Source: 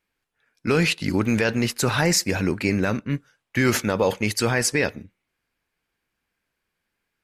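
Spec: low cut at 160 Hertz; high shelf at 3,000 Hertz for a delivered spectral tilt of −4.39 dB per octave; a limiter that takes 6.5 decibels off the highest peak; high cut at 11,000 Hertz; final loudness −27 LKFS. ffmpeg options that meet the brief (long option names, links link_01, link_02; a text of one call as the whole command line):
ffmpeg -i in.wav -af "highpass=160,lowpass=11000,highshelf=frequency=3000:gain=-6,alimiter=limit=-15dB:level=0:latency=1" out.wav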